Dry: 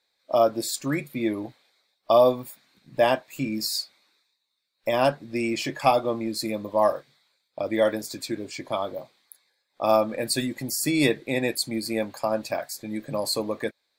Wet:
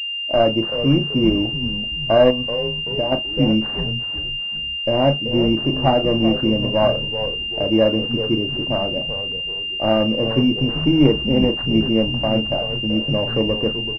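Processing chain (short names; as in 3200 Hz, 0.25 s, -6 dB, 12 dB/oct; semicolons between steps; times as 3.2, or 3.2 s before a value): FFT order left unsorted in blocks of 16 samples; in parallel at -4 dB: overloaded stage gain 24.5 dB; on the sum: tilt -3.5 dB/oct; doubler 36 ms -9.5 dB; frequency-shifting echo 0.382 s, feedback 41%, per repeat -96 Hz, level -9.5 dB; 2.3–3.12 compressor 5:1, threshold -20 dBFS, peak gain reduction 8 dB; pulse-width modulation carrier 2800 Hz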